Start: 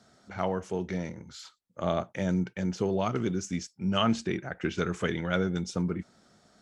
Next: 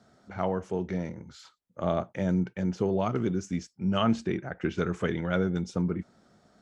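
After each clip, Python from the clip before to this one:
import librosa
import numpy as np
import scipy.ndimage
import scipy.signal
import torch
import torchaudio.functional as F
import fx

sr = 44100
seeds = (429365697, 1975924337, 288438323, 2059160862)

y = fx.high_shelf(x, sr, hz=2100.0, db=-8.5)
y = F.gain(torch.from_numpy(y), 1.5).numpy()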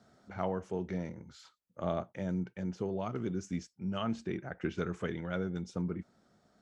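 y = fx.rider(x, sr, range_db=5, speed_s=0.5)
y = F.gain(torch.from_numpy(y), -7.0).numpy()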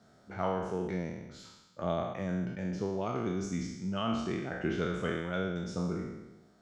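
y = fx.spec_trails(x, sr, decay_s=1.06)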